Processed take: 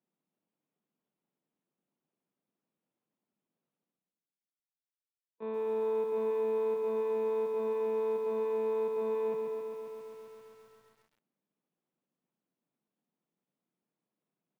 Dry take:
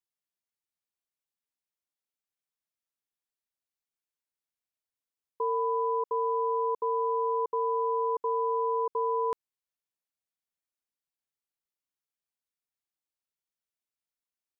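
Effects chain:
adaptive Wiener filter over 25 samples
downward expander −18 dBFS
one-pitch LPC vocoder at 8 kHz 220 Hz
Butterworth high-pass 170 Hz 36 dB per octave
low-shelf EQ 270 Hz +8.5 dB
reversed playback
upward compression, threshold −57 dBFS
reversed playback
repeating echo 265 ms, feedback 21%, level −13 dB
feedback echo at a low word length 134 ms, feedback 80%, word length 12 bits, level −5 dB
level +7 dB

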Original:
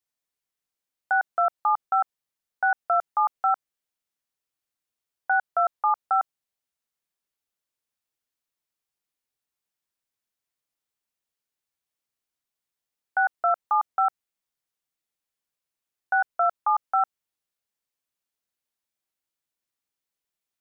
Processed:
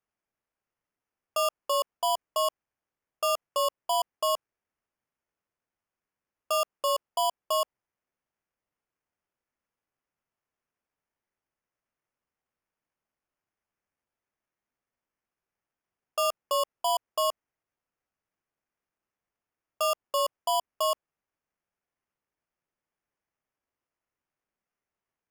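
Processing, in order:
decimation without filtering 9×
change of speed 0.814×
level −4.5 dB

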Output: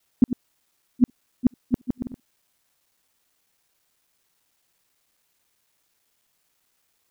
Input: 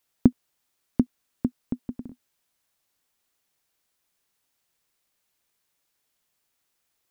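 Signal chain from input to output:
reversed piece by piece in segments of 55 ms
brickwall limiter −13.5 dBFS, peak gain reduction 10 dB
level +6 dB

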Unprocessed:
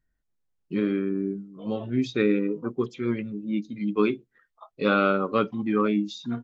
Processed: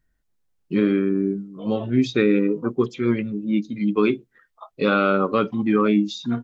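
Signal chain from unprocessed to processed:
brickwall limiter −14 dBFS, peak gain reduction 4.5 dB
level +6 dB

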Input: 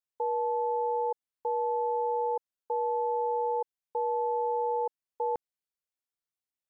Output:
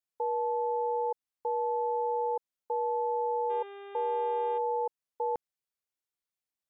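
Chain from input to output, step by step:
0:00.53–0:01.04: spectral envelope exaggerated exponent 1.5
0:03.49–0:04.57: hum with harmonics 400 Hz, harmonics 9, −44 dBFS −7 dB per octave
level −1 dB

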